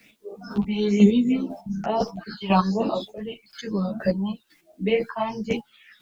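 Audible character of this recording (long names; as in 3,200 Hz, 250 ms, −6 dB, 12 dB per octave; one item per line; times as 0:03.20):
phaser sweep stages 6, 1.1 Hz, lowest notch 440–1,800 Hz
a quantiser's noise floor 12 bits, dither triangular
chopped level 2 Hz, depth 60%, duty 20%
a shimmering, thickened sound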